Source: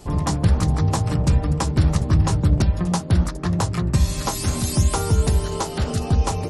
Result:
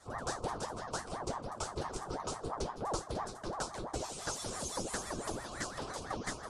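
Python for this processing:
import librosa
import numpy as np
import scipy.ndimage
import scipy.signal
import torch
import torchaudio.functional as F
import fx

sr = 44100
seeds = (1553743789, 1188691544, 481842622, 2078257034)

p1 = scipy.signal.sosfilt(scipy.signal.butter(8, 10000.0, 'lowpass', fs=sr, output='sos'), x)
p2 = fx.low_shelf(p1, sr, hz=69.0, db=-12.0)
p3 = fx.fixed_phaser(p2, sr, hz=470.0, stages=6)
p4 = fx.resonator_bank(p3, sr, root=54, chord='minor', decay_s=0.2)
p5 = p4 + fx.echo_single(p4, sr, ms=155, db=-23.0, dry=0)
p6 = fx.ring_lfo(p5, sr, carrier_hz=580.0, swing_pct=75, hz=5.9)
y = p6 * librosa.db_to_amplitude(6.5)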